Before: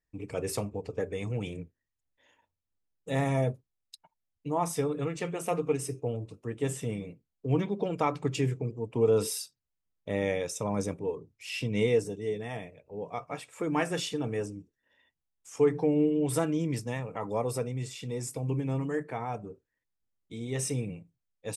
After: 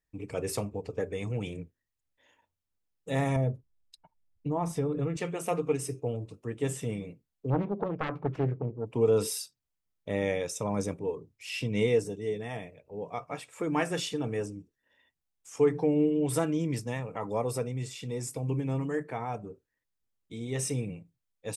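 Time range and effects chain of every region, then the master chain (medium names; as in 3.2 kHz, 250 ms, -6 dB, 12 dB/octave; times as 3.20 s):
3.36–5.17 s: tilt EQ -2.5 dB/octave + compression 2:1, threshold -28 dBFS
7.50–8.87 s: self-modulated delay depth 0.71 ms + low-pass 1.4 kHz
whole clip: none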